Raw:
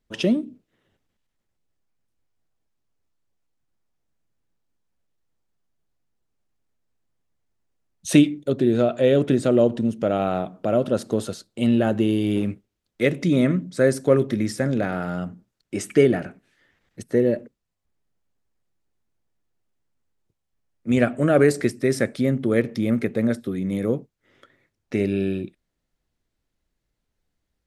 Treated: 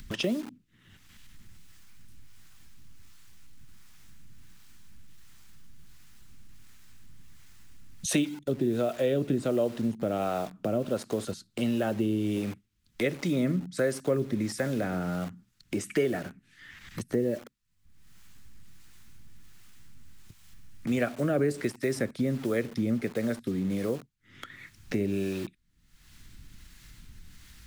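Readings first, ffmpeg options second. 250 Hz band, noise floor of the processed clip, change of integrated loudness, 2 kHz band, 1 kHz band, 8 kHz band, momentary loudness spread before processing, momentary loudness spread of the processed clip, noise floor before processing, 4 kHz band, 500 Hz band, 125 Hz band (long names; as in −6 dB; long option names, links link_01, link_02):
−8.0 dB, −68 dBFS, −8.0 dB, −6.5 dB, −7.0 dB, −3.0 dB, 11 LU, 12 LU, −79 dBFS, −4.5 dB, −8.5 dB, −7.5 dB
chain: -filter_complex "[0:a]acrossover=split=270|1100[link_01][link_02][link_03];[link_02]acrusher=bits=6:mix=0:aa=0.000001[link_04];[link_01][link_04][link_03]amix=inputs=3:normalize=0,acompressor=mode=upward:threshold=-34dB:ratio=2.5,acrossover=split=430[link_05][link_06];[link_05]aeval=exprs='val(0)*(1-0.5/2+0.5/2*cos(2*PI*1.4*n/s))':channel_layout=same[link_07];[link_06]aeval=exprs='val(0)*(1-0.5/2-0.5/2*cos(2*PI*1.4*n/s))':channel_layout=same[link_08];[link_07][link_08]amix=inputs=2:normalize=0,acompressor=threshold=-43dB:ratio=2,volume=7.5dB"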